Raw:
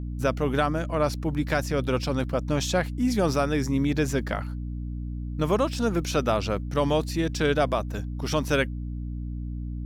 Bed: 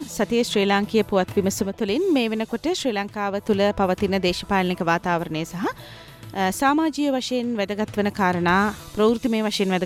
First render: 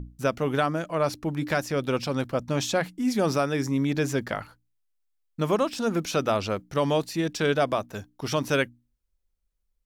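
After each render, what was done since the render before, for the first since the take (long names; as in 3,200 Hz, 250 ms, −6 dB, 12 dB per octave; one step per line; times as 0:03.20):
mains-hum notches 60/120/180/240/300 Hz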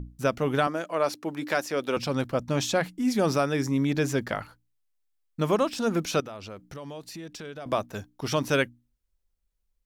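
0:00.67–0:01.97: high-pass filter 290 Hz
0:06.20–0:07.66: downward compressor 4 to 1, threshold −39 dBFS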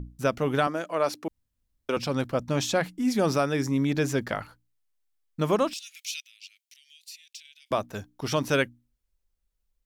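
0:01.28–0:01.89: fill with room tone
0:05.73–0:07.71: Butterworth high-pass 2,300 Hz 48 dB per octave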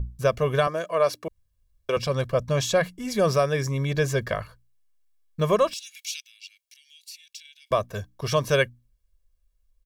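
low-shelf EQ 120 Hz +6 dB
comb filter 1.8 ms, depth 76%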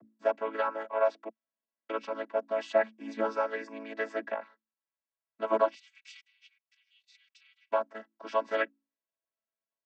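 channel vocoder with a chord as carrier major triad, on A3
resonant band-pass 1,400 Hz, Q 0.94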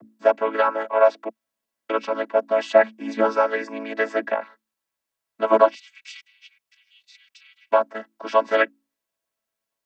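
level +10.5 dB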